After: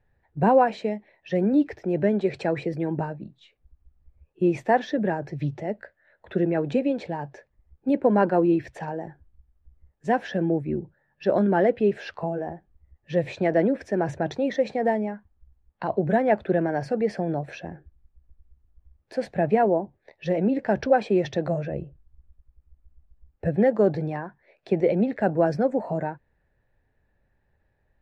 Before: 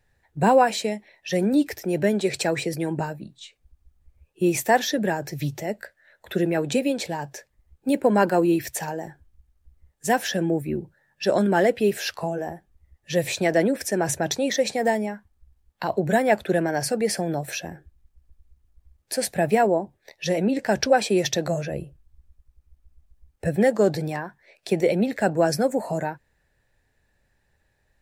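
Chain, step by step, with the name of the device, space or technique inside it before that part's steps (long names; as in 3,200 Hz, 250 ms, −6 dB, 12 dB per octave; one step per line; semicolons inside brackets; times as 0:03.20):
phone in a pocket (low-pass filter 3,500 Hz 12 dB per octave; high-shelf EQ 2,100 Hz −12 dB)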